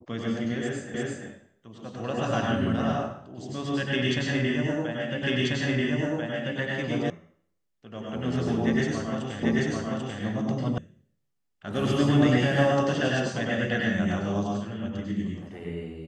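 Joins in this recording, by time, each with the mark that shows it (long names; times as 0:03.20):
0:00.94: the same again, the last 0.34 s
0:05.23: the same again, the last 1.34 s
0:07.10: cut off before it has died away
0:09.43: the same again, the last 0.79 s
0:10.78: cut off before it has died away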